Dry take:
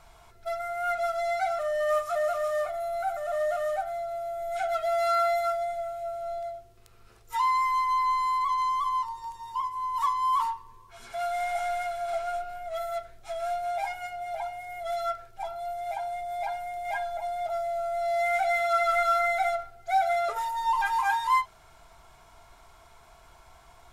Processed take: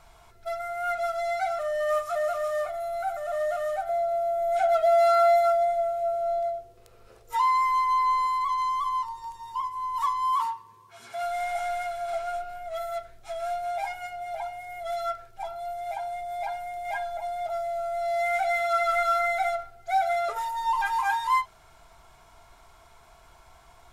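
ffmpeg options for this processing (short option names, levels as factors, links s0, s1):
-filter_complex "[0:a]asettb=1/sr,asplit=3[s0][s1][s2];[s0]atrim=end=3.894[s3];[s1]atrim=start=3.89:end=8.27,asetpts=PTS-STARTPTS,afade=t=in:d=0.004:c=qsin,afade=t=out:st=4.376:d=0.004:c=qsin,equalizer=f=530:t=o:w=0.77:g=13.5[s4];[s2]atrim=start=8.266[s5];[s3][s4]acrossfade=d=0.004:c1=hsin:c2=qsin[s6];[s6][s5]acrossfade=d=0.004:c1=qsin:c2=hsin,asettb=1/sr,asplit=3[s7][s8][s9];[s7]atrim=end=10.334[s10];[s8]atrim=start=10.33:end=11.22,asetpts=PTS-STARTPTS,afade=t=in:d=0.004:c=qsin,afade=t=out:st=0.886:d=0.004:c=qsin,highpass=f=98:w=0.5412,highpass=f=98:w=1.3066[s11];[s9]atrim=start=11.216[s12];[s10][s11]acrossfade=d=0.004:c1=hsin:c2=qsin[s13];[s13][s12]acrossfade=d=0.004:c1=qsin:c2=hsin"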